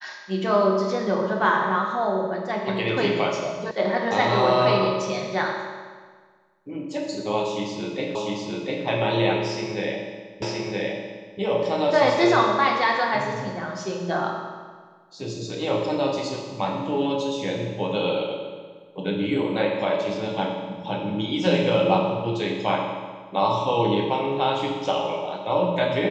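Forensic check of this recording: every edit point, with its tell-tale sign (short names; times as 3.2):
3.71 sound cut off
8.15 repeat of the last 0.7 s
10.42 repeat of the last 0.97 s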